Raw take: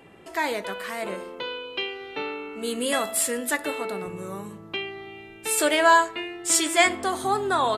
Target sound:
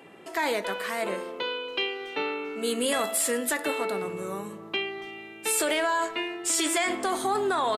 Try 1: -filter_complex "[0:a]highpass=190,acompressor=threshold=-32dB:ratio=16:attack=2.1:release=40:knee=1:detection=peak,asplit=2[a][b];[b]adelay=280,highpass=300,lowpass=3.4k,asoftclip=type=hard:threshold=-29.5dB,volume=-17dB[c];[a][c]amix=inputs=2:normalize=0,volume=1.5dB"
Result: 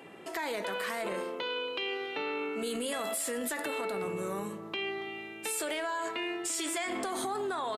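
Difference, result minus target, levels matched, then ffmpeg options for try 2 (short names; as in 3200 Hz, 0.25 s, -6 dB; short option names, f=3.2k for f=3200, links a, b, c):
compressor: peak gain reduction +8.5 dB
-filter_complex "[0:a]highpass=190,acompressor=threshold=-23dB:ratio=16:attack=2.1:release=40:knee=1:detection=peak,asplit=2[a][b];[b]adelay=280,highpass=300,lowpass=3.4k,asoftclip=type=hard:threshold=-29.5dB,volume=-17dB[c];[a][c]amix=inputs=2:normalize=0,volume=1.5dB"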